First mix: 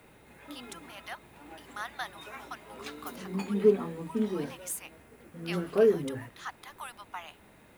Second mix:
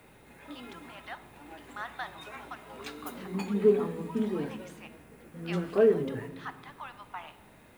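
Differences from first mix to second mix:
speech: add air absorption 220 m; reverb: on, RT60 1.2 s

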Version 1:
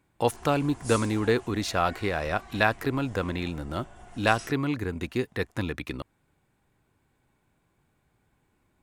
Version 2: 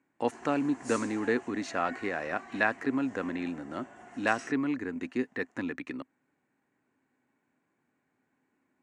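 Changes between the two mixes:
speech -5.5 dB; master: add speaker cabinet 220–7500 Hz, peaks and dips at 260 Hz +10 dB, 1800 Hz +6 dB, 3500 Hz -9 dB, 5000 Hz -7 dB

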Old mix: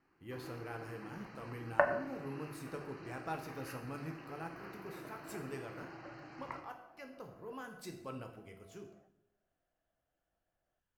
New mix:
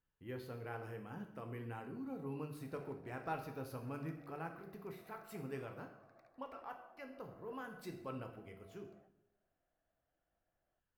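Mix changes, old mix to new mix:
speech: add bell 7100 Hz -9.5 dB 1.4 oct; first sound: muted

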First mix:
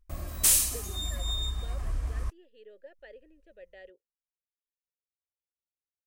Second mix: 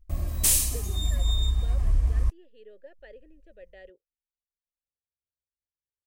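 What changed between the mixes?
background: add bell 1400 Hz -6 dB 0.37 oct; master: add low shelf 220 Hz +9.5 dB

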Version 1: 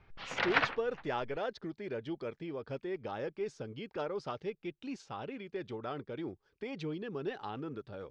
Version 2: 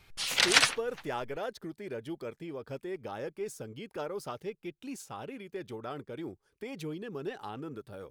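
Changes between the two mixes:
background: remove LPF 1600 Hz 12 dB/oct; master: remove LPF 5100 Hz 24 dB/oct

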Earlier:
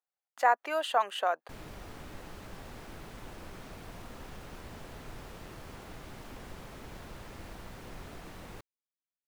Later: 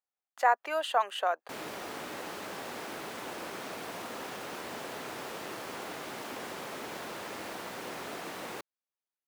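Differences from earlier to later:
background +9.5 dB; master: add HPF 310 Hz 12 dB/oct

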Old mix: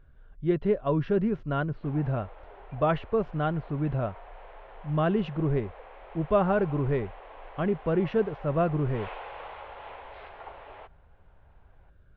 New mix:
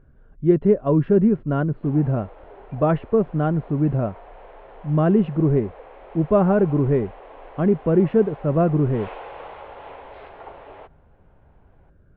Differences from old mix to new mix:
speech: add LPF 2400 Hz 12 dB/oct; master: add bell 250 Hz +10.5 dB 2.5 oct

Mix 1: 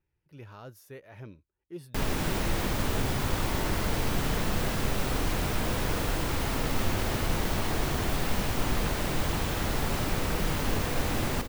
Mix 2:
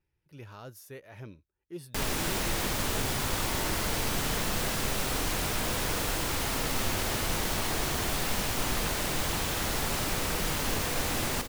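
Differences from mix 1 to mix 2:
background: add low shelf 370 Hz -5 dB; master: add bell 9200 Hz +6 dB 2.4 oct

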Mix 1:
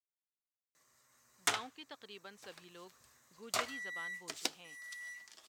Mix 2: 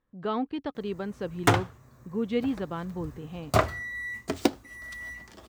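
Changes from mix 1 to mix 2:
speech: entry -1.25 s; master: remove band-pass 6800 Hz, Q 0.64

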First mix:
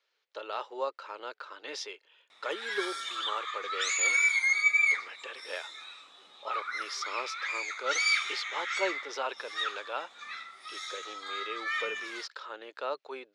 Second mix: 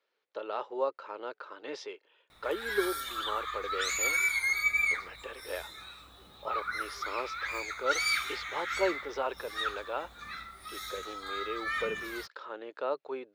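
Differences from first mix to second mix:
background: remove speaker cabinet 280–6200 Hz, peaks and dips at 1500 Hz -5 dB, 4200 Hz -8 dB, 5900 Hz -3 dB; master: add tilt -3.5 dB/oct

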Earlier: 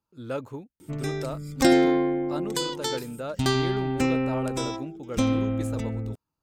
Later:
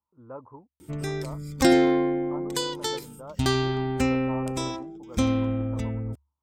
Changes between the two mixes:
speech: add ladder low-pass 1100 Hz, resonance 70%; master: add bell 71 Hz +15 dB 0.24 oct

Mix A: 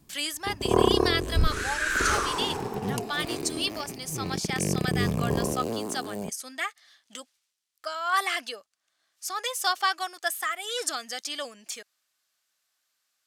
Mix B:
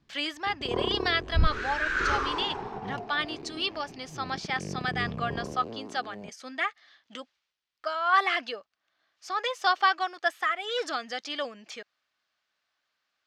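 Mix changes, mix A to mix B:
speech +4.0 dB; first sound -8.5 dB; master: add air absorption 220 m

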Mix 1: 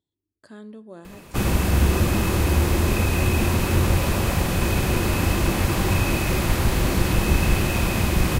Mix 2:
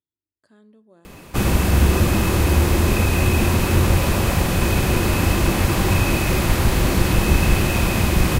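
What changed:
speech -11.5 dB; background +3.0 dB

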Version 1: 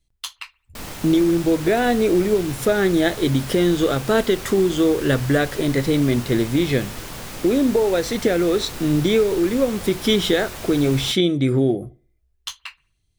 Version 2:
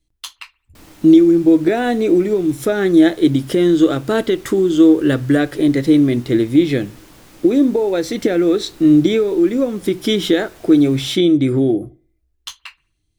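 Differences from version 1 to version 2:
background -11.5 dB; master: add bell 310 Hz +11.5 dB 0.29 oct

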